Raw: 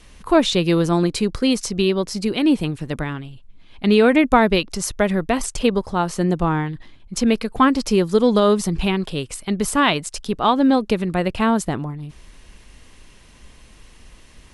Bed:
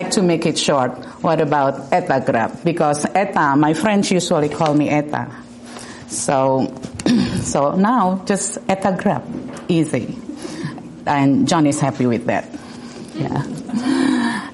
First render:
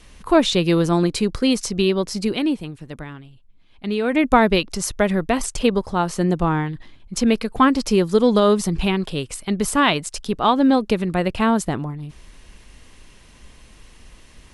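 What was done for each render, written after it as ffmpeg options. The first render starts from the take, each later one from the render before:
ffmpeg -i in.wav -filter_complex "[0:a]asplit=3[link_01][link_02][link_03];[link_01]atrim=end=2.58,asetpts=PTS-STARTPTS,afade=type=out:start_time=2.32:duration=0.26:silence=0.375837[link_04];[link_02]atrim=start=2.58:end=4.04,asetpts=PTS-STARTPTS,volume=-8.5dB[link_05];[link_03]atrim=start=4.04,asetpts=PTS-STARTPTS,afade=type=in:duration=0.26:silence=0.375837[link_06];[link_04][link_05][link_06]concat=n=3:v=0:a=1" out.wav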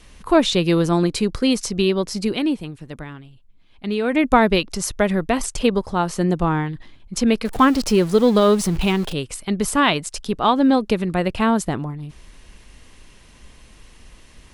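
ffmpeg -i in.wav -filter_complex "[0:a]asettb=1/sr,asplit=3[link_01][link_02][link_03];[link_01]atrim=end=7.454[link_04];[link_02]atrim=start=7.45:end=9.13,asetpts=PTS-STARTPTS,afade=type=in:duration=0.004:curve=qsin,afade=type=out:start_time=1.676:duration=0.004:curve=qsin,aeval=exprs='val(0)+0.5*0.0355*sgn(val(0))':channel_layout=same[link_05];[link_03]atrim=start=9.126[link_06];[link_04][link_05]acrossfade=duration=0.004:curve1=hsin:curve2=qsin[link_07];[link_07][link_06]acrossfade=duration=0.004:curve1=qsin:curve2=hsin" out.wav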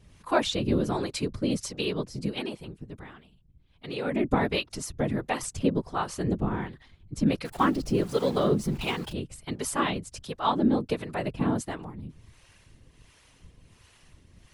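ffmpeg -i in.wav -filter_complex "[0:a]afftfilt=real='hypot(re,im)*cos(2*PI*random(0))':imag='hypot(re,im)*sin(2*PI*random(1))':win_size=512:overlap=0.75,acrossover=split=500[link_01][link_02];[link_01]aeval=exprs='val(0)*(1-0.7/2+0.7/2*cos(2*PI*1.4*n/s))':channel_layout=same[link_03];[link_02]aeval=exprs='val(0)*(1-0.7/2-0.7/2*cos(2*PI*1.4*n/s))':channel_layout=same[link_04];[link_03][link_04]amix=inputs=2:normalize=0" out.wav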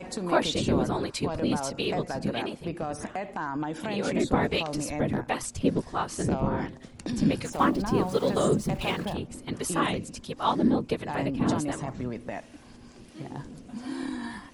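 ffmpeg -i in.wav -i bed.wav -filter_complex "[1:a]volume=-17.5dB[link_01];[0:a][link_01]amix=inputs=2:normalize=0" out.wav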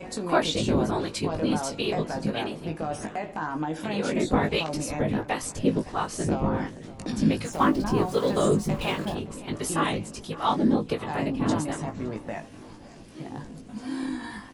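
ffmpeg -i in.wav -filter_complex "[0:a]asplit=2[link_01][link_02];[link_02]adelay=19,volume=-5dB[link_03];[link_01][link_03]amix=inputs=2:normalize=0,asplit=2[link_04][link_05];[link_05]adelay=564,lowpass=frequency=3500:poles=1,volume=-18dB,asplit=2[link_06][link_07];[link_07]adelay=564,lowpass=frequency=3500:poles=1,volume=0.54,asplit=2[link_08][link_09];[link_09]adelay=564,lowpass=frequency=3500:poles=1,volume=0.54,asplit=2[link_10][link_11];[link_11]adelay=564,lowpass=frequency=3500:poles=1,volume=0.54,asplit=2[link_12][link_13];[link_13]adelay=564,lowpass=frequency=3500:poles=1,volume=0.54[link_14];[link_04][link_06][link_08][link_10][link_12][link_14]amix=inputs=6:normalize=0" out.wav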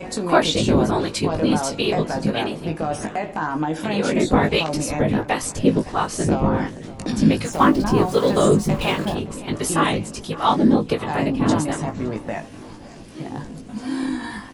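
ffmpeg -i in.wav -af "volume=6.5dB,alimiter=limit=-3dB:level=0:latency=1" out.wav

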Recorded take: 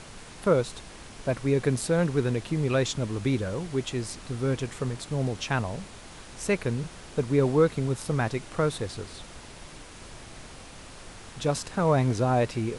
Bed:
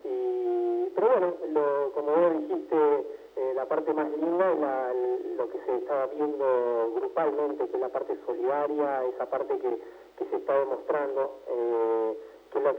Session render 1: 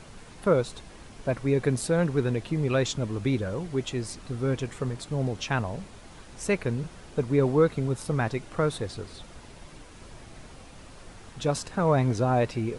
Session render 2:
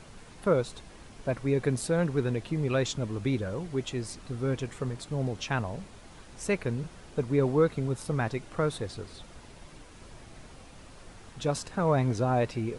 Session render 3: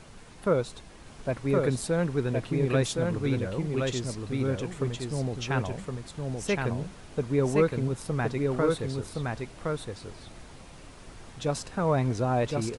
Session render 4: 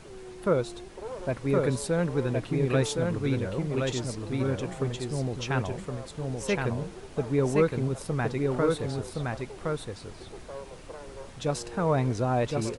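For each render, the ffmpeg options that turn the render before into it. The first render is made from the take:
ffmpeg -i in.wav -af "afftdn=noise_reduction=6:noise_floor=-46" out.wav
ffmpeg -i in.wav -af "volume=-2.5dB" out.wav
ffmpeg -i in.wav -af "aecho=1:1:1067:0.708" out.wav
ffmpeg -i in.wav -i bed.wav -filter_complex "[1:a]volume=-16dB[link_01];[0:a][link_01]amix=inputs=2:normalize=0" out.wav

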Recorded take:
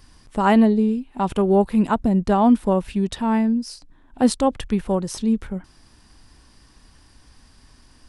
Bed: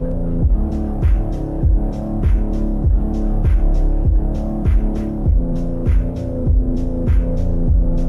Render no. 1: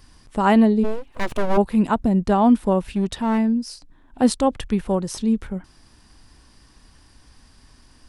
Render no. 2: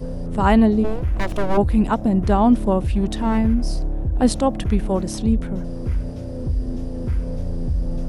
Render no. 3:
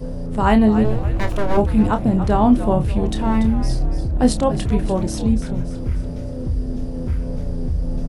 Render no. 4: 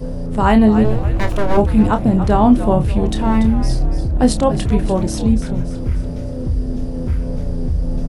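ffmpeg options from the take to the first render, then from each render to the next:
ffmpeg -i in.wav -filter_complex "[0:a]asplit=3[link_01][link_02][link_03];[link_01]afade=type=out:start_time=0.83:duration=0.02[link_04];[link_02]aeval=exprs='abs(val(0))':channel_layout=same,afade=type=in:start_time=0.83:duration=0.02,afade=type=out:start_time=1.56:duration=0.02[link_05];[link_03]afade=type=in:start_time=1.56:duration=0.02[link_06];[link_04][link_05][link_06]amix=inputs=3:normalize=0,asplit=3[link_07][link_08][link_09];[link_07]afade=type=out:start_time=2.88:duration=0.02[link_10];[link_08]aeval=exprs='clip(val(0),-1,0.106)':channel_layout=same,afade=type=in:start_time=2.88:duration=0.02,afade=type=out:start_time=3.37:duration=0.02[link_11];[link_09]afade=type=in:start_time=3.37:duration=0.02[link_12];[link_10][link_11][link_12]amix=inputs=3:normalize=0" out.wav
ffmpeg -i in.wav -i bed.wav -filter_complex "[1:a]volume=-7.5dB[link_01];[0:a][link_01]amix=inputs=2:normalize=0" out.wav
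ffmpeg -i in.wav -filter_complex "[0:a]asplit=2[link_01][link_02];[link_02]adelay=28,volume=-9dB[link_03];[link_01][link_03]amix=inputs=2:normalize=0,asplit=2[link_04][link_05];[link_05]asplit=5[link_06][link_07][link_08][link_09][link_10];[link_06]adelay=287,afreqshift=-95,volume=-11dB[link_11];[link_07]adelay=574,afreqshift=-190,volume=-17.2dB[link_12];[link_08]adelay=861,afreqshift=-285,volume=-23.4dB[link_13];[link_09]adelay=1148,afreqshift=-380,volume=-29.6dB[link_14];[link_10]adelay=1435,afreqshift=-475,volume=-35.8dB[link_15];[link_11][link_12][link_13][link_14][link_15]amix=inputs=5:normalize=0[link_16];[link_04][link_16]amix=inputs=2:normalize=0" out.wav
ffmpeg -i in.wav -af "volume=3dB,alimiter=limit=-2dB:level=0:latency=1" out.wav

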